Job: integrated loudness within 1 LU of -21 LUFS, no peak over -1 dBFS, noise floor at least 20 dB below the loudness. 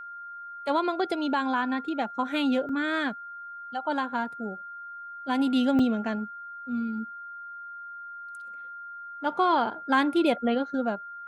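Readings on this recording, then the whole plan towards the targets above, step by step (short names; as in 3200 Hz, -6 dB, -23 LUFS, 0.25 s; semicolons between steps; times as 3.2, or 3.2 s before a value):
dropouts 2; longest dropout 3.7 ms; steady tone 1400 Hz; tone level -38 dBFS; loudness -27.5 LUFS; peak -10.0 dBFS; loudness target -21.0 LUFS
-> interpolate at 2.69/5.79, 3.7 ms; notch 1400 Hz, Q 30; gain +6.5 dB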